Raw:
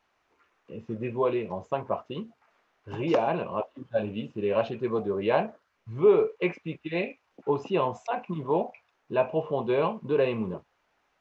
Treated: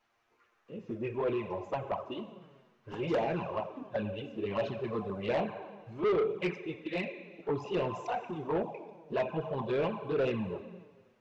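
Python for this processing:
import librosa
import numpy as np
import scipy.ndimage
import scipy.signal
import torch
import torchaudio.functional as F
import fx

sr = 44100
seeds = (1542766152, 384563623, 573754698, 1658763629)

y = fx.rev_schroeder(x, sr, rt60_s=1.4, comb_ms=30, drr_db=10.0)
y = fx.env_flanger(y, sr, rest_ms=8.7, full_db=-19.5)
y = 10.0 ** (-24.5 / 20.0) * np.tanh(y / 10.0 ** (-24.5 / 20.0))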